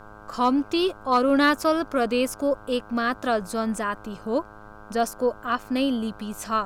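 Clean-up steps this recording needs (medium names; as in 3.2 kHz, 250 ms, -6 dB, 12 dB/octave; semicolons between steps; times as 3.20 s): clip repair -11 dBFS; de-hum 105.1 Hz, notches 15; noise print and reduce 24 dB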